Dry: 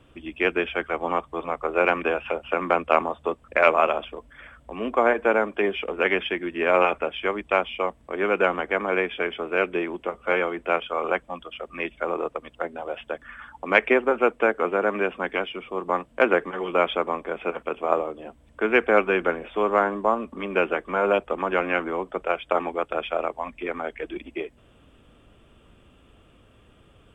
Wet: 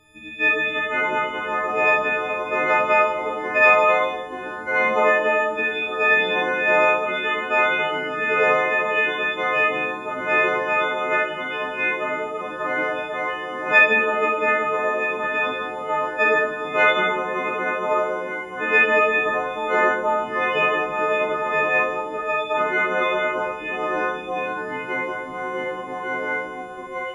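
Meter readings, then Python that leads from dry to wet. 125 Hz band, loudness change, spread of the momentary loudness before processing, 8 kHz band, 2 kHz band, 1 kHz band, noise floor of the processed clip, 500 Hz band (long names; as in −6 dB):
0.0 dB, +4.0 dB, 13 LU, can't be measured, +8.0 dB, +4.5 dB, −32 dBFS, +1.5 dB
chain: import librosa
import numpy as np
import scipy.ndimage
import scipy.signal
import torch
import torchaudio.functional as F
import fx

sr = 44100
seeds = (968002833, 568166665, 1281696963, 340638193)

y = fx.freq_snap(x, sr, grid_st=6)
y = fx.rev_schroeder(y, sr, rt60_s=0.58, comb_ms=31, drr_db=-2.0)
y = fx.echo_pitch(y, sr, ms=448, semitones=-3, count=3, db_per_echo=-6.0)
y = y * 10.0 ** (-5.0 / 20.0)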